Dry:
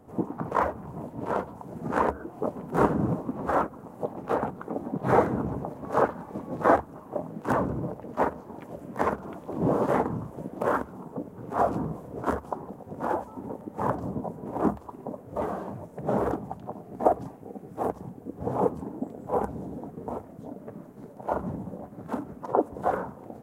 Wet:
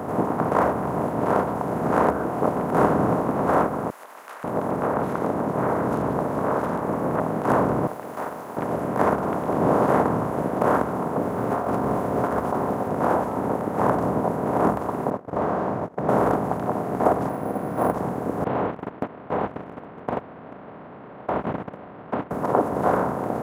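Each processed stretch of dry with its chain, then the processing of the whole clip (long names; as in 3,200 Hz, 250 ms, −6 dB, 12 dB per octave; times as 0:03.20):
0:03.90–0:07.20: notch filter 750 Hz, Q 9.7 + downward compressor, threshold −30 dBFS + multiband delay without the direct sound highs, lows 540 ms, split 2,500 Hz
0:07.87–0:08.57: first difference + downward compressor 2 to 1, threshold −47 dBFS + log-companded quantiser 6 bits
0:11.22–0:12.88: notch comb filter 160 Hz + compressor whose output falls as the input rises −35 dBFS + log-companded quantiser 8 bits
0:15.10–0:16.09: downward compressor 1.5 to 1, threshold −40 dBFS + high-frequency loss of the air 220 metres + noise gate −43 dBFS, range −44 dB
0:17.29–0:17.94: notch comb filter 420 Hz + bad sample-rate conversion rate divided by 4×, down filtered, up hold
0:18.44–0:22.31: linear delta modulator 16 kbit/s, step −35 dBFS + noise gate −32 dBFS, range −39 dB + downward compressor 4 to 1, threshold −34 dBFS
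whole clip: compressor on every frequency bin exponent 0.4; high-pass filter 62 Hz; level −1 dB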